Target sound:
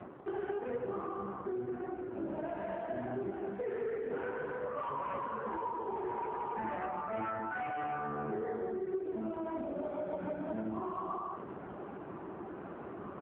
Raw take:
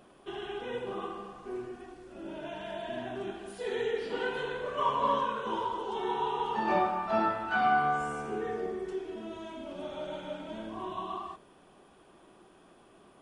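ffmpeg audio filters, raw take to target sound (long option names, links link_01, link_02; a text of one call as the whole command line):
ffmpeg -i in.wav -filter_complex "[0:a]aecho=1:1:113:0.0944,areverse,acompressor=mode=upward:threshold=-41dB:ratio=2.5,areverse,highpass=44,aemphasis=mode=reproduction:type=cd,asplit=2[link_01][link_02];[link_02]aeval=exprs='0.188*sin(PI/2*5.01*val(0)/0.188)':channel_layout=same,volume=-10dB[link_03];[link_01][link_03]amix=inputs=2:normalize=0,lowpass=frequency=2000:width=0.5412,lowpass=frequency=2000:width=1.3066,acompressor=threshold=-30dB:ratio=10,lowshelf=frequency=94:gain=10,volume=-3.5dB" -ar 8000 -c:a libopencore_amrnb -b:a 5900 out.amr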